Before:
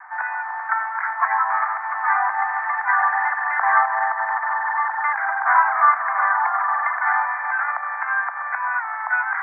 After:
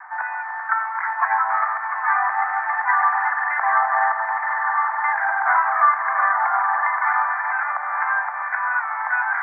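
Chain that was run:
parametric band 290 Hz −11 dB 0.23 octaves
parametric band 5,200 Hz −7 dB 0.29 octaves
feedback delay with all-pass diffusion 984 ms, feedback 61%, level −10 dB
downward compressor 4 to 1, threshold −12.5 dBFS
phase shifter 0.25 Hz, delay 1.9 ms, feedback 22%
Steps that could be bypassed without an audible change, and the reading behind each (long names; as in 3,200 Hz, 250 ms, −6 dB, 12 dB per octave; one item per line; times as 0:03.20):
parametric band 290 Hz: nothing at its input below 570 Hz
parametric band 5,200 Hz: nothing at its input above 2,200 Hz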